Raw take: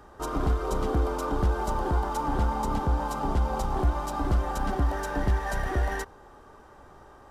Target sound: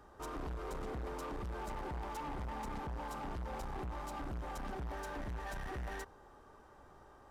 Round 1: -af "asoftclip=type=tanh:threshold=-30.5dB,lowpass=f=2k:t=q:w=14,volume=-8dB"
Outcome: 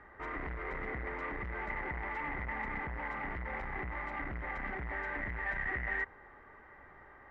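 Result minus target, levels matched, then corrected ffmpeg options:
2000 Hz band +9.0 dB
-af "asoftclip=type=tanh:threshold=-30.5dB,volume=-8dB"

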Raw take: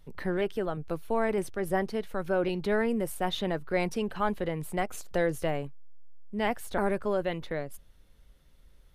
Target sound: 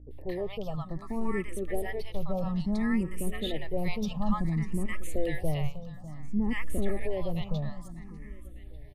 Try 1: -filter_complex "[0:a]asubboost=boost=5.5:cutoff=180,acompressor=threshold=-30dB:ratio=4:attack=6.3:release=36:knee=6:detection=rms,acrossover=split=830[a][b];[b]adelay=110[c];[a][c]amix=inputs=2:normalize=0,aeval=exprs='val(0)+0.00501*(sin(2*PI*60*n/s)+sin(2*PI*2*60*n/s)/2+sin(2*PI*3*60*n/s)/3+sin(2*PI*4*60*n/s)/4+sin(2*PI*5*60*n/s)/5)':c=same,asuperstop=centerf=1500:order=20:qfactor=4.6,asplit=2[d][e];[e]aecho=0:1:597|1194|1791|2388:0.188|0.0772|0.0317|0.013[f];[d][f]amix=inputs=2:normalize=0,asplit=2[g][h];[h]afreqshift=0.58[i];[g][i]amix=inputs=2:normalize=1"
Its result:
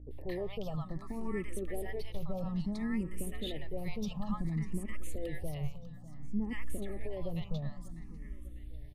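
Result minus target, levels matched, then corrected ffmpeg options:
compressor: peak gain reduction +13.5 dB
-filter_complex "[0:a]asubboost=boost=5.5:cutoff=180,acrossover=split=830[a][b];[b]adelay=110[c];[a][c]amix=inputs=2:normalize=0,aeval=exprs='val(0)+0.00501*(sin(2*PI*60*n/s)+sin(2*PI*2*60*n/s)/2+sin(2*PI*3*60*n/s)/3+sin(2*PI*4*60*n/s)/4+sin(2*PI*5*60*n/s)/5)':c=same,asuperstop=centerf=1500:order=20:qfactor=4.6,asplit=2[d][e];[e]aecho=0:1:597|1194|1791|2388:0.188|0.0772|0.0317|0.013[f];[d][f]amix=inputs=2:normalize=0,asplit=2[g][h];[h]afreqshift=0.58[i];[g][i]amix=inputs=2:normalize=1"

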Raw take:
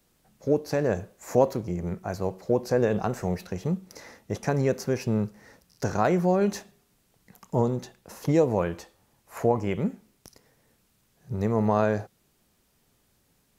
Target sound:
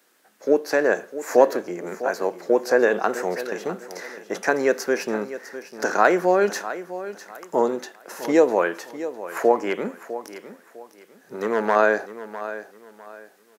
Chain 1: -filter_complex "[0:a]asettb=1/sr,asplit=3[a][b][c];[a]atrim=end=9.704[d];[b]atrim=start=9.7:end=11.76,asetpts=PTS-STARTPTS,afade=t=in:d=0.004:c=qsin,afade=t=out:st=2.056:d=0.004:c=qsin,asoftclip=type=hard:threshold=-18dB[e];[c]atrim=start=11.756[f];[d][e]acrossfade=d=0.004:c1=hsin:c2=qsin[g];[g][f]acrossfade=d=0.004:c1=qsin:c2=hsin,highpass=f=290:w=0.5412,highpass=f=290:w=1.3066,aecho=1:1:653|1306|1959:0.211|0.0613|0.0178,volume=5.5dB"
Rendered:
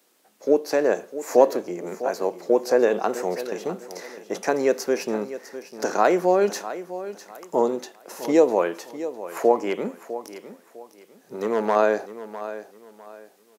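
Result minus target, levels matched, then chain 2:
2000 Hz band -6.5 dB
-filter_complex "[0:a]asettb=1/sr,asplit=3[a][b][c];[a]atrim=end=9.704[d];[b]atrim=start=9.7:end=11.76,asetpts=PTS-STARTPTS,afade=t=in:d=0.004:c=qsin,afade=t=out:st=2.056:d=0.004:c=qsin,asoftclip=type=hard:threshold=-18dB[e];[c]atrim=start=11.756[f];[d][e]acrossfade=d=0.004:c1=hsin:c2=qsin[g];[g][f]acrossfade=d=0.004:c1=qsin:c2=hsin,highpass=f=290:w=0.5412,highpass=f=290:w=1.3066,equalizer=f=1.6k:w=2:g=8.5,aecho=1:1:653|1306|1959:0.211|0.0613|0.0178,volume=5.5dB"

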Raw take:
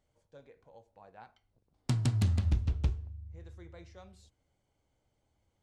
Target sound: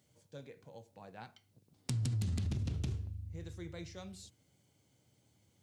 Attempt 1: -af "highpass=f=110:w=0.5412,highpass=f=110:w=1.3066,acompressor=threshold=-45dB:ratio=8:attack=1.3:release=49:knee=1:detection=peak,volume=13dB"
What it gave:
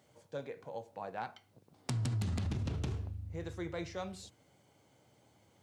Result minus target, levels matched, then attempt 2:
1000 Hz band +11.5 dB
-af "highpass=f=110:w=0.5412,highpass=f=110:w=1.3066,equalizer=f=870:w=0.42:g=-12.5,acompressor=threshold=-45dB:ratio=8:attack=1.3:release=49:knee=1:detection=peak,volume=13dB"

